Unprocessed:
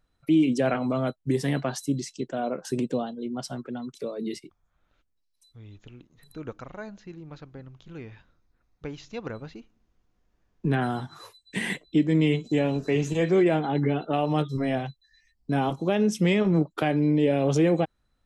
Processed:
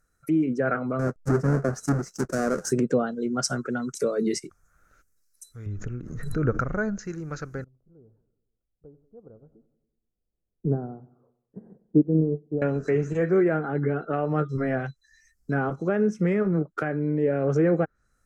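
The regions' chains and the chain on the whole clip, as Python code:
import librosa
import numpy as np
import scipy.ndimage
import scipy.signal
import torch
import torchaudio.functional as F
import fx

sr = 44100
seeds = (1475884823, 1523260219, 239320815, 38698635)

y = fx.chain(x, sr, fx.halfwave_hold(),
    fx.peak_eq(hz=2400.0, db=-13.0, octaves=2.0), at=(0.99, 2.71))
y = fx.chain(y, sr, fx.lowpass(hz=1500.0, slope=6),
    fx.low_shelf(hz=270.0, db=10.0),
    fx.pre_swell(db_per_s=42.0), at=(5.66, 6.99))
y = fx.chain(y, sr, fx.cheby2_lowpass(hz=2000.0, order=4, stop_db=50),
    fx.echo_feedback(ms=94, feedback_pct=58, wet_db=-16.5),
    fx.upward_expand(threshold_db=-32.0, expansion=2.5), at=(7.64, 12.62))
y = fx.env_lowpass_down(y, sr, base_hz=1800.0, full_db=-21.5)
y = fx.curve_eq(y, sr, hz=(200.0, 290.0, 440.0, 960.0, 1400.0, 3400.0, 6100.0), db=(0, -3, 3, -7, 10, -13, 12))
y = fx.rider(y, sr, range_db=10, speed_s=2.0)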